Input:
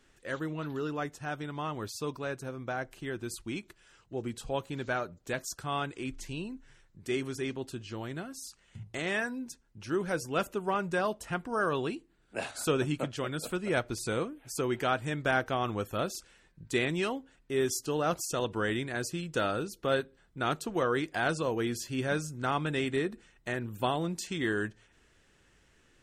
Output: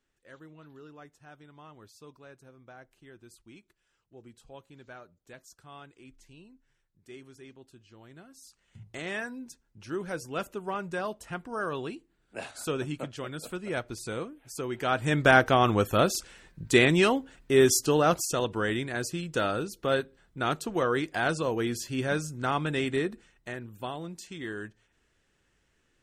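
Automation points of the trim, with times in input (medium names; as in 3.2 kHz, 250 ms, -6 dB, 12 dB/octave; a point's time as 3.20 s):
7.95 s -15 dB
8.89 s -3 dB
14.74 s -3 dB
15.16 s +9 dB
17.79 s +9 dB
18.52 s +2 dB
23.05 s +2 dB
23.74 s -6.5 dB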